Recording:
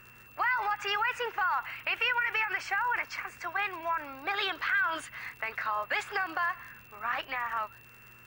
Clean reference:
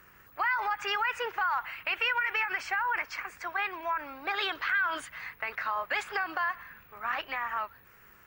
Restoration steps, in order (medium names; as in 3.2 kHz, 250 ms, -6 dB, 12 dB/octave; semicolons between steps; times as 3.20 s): de-click; de-hum 121.1 Hz, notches 4; band-stop 2.7 kHz, Q 30